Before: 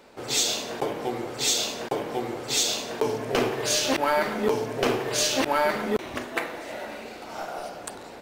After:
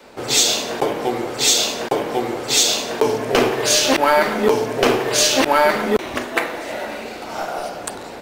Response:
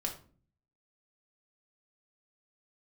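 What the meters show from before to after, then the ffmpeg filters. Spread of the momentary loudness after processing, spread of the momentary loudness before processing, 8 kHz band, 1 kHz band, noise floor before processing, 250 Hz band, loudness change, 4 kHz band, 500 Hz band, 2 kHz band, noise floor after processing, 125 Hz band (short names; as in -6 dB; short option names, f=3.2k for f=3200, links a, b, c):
13 LU, 13 LU, +8.5 dB, +8.5 dB, -42 dBFS, +7.5 dB, +8.5 dB, +8.5 dB, +8.0 dB, +8.5 dB, -33 dBFS, +5.5 dB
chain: -af "adynamicequalizer=threshold=0.00501:dfrequency=110:dqfactor=0.77:tfrequency=110:tqfactor=0.77:attack=5:release=100:ratio=0.375:range=2:mode=cutabove:tftype=bell,volume=8.5dB"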